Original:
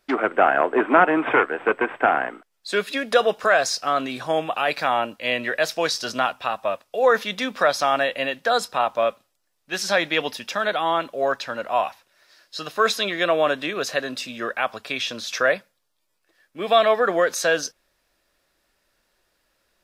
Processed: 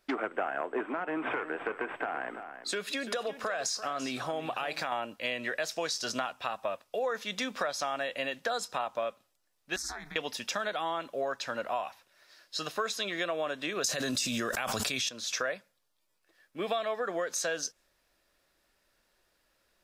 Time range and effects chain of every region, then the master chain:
0.86–4.92 compressor 2.5:1, threshold -25 dBFS + echo 0.339 s -13.5 dB
9.76–10.16 compressor 16:1, threshold -25 dBFS + ring modulator 140 Hz + fixed phaser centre 1200 Hz, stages 4
13.84–15.09 tone controls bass +8 dB, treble +10 dB + fast leveller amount 100%
whole clip: dynamic EQ 7000 Hz, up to +7 dB, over -46 dBFS, Q 1.5; compressor, threshold -26 dBFS; gain -3.5 dB

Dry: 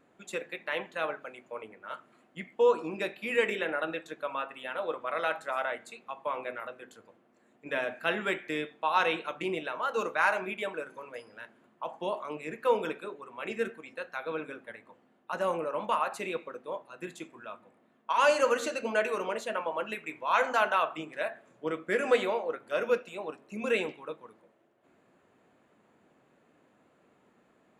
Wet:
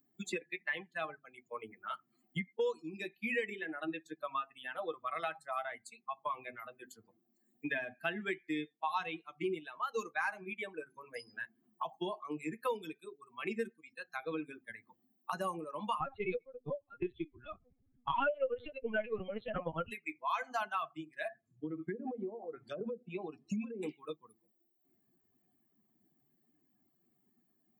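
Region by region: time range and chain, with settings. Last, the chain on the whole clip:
16–19.91 bell 420 Hz +5 dB 0.56 oct + small resonant body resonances 260/540/1400/2200 Hz, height 9 dB, ringing for 40 ms + LPC vocoder at 8 kHz pitch kept
21.31–23.83 treble ducked by the level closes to 630 Hz, closed at -25.5 dBFS + low shelf 130 Hz +10.5 dB + compressor, threshold -35 dBFS
whole clip: per-bin expansion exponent 2; three-band squash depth 100%

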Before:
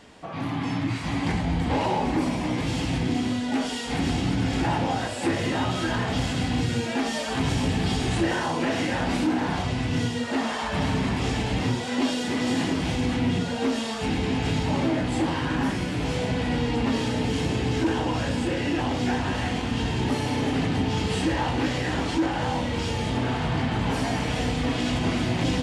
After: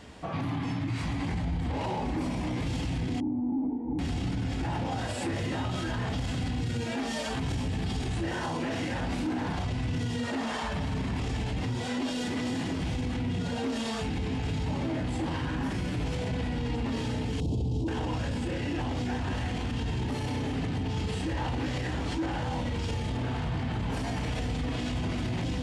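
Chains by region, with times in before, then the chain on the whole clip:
3.2–3.99 half-waves squared off + vocal tract filter u + small resonant body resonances 310/860 Hz, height 9 dB, ringing for 85 ms
17.4–17.88 Chebyshev band-stop 810–3600 Hz + low shelf 350 Hz +11 dB
whole clip: bell 62 Hz +9 dB 2.4 oct; limiter -24 dBFS

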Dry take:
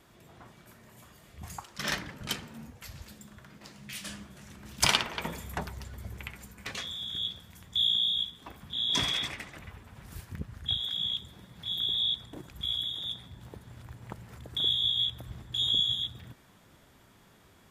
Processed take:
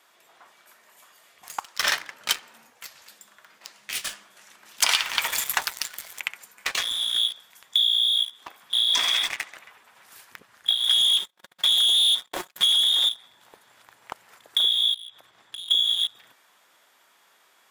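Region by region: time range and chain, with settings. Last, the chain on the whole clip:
4.91–6.2 G.711 law mismatch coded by mu + tilt shelf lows -8 dB, about 1100 Hz
10.89–13.09 comb 5.5 ms, depth 77% + sample leveller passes 3 + gate -35 dBFS, range -37 dB
14.94–15.71 high shelf 9600 Hz -11 dB + compressor 8:1, threshold -41 dBFS
whole clip: HPF 780 Hz 12 dB/oct; sample leveller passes 2; compressor, threshold -26 dBFS; gain +7 dB

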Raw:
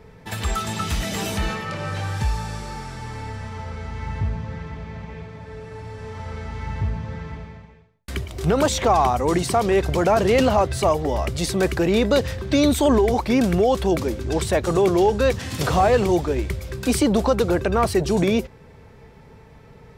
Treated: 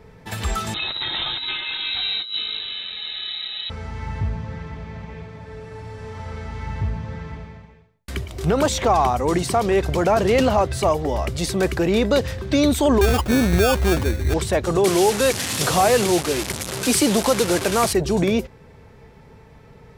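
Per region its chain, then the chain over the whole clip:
0.74–3.7 negative-ratio compressor -25 dBFS, ratio -0.5 + inverted band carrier 3900 Hz
13.01–14.34 bell 78 Hz +12.5 dB 0.65 oct + sample-rate reducer 2000 Hz
14.84–17.93 delta modulation 64 kbps, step -21.5 dBFS + HPF 120 Hz + high shelf 3200 Hz +7.5 dB
whole clip: dry

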